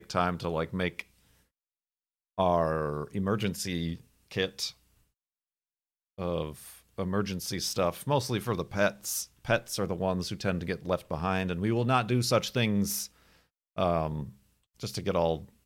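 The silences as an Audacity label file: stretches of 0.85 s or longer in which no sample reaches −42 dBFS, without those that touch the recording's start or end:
1.020000	2.380000	silence
4.710000	6.190000	silence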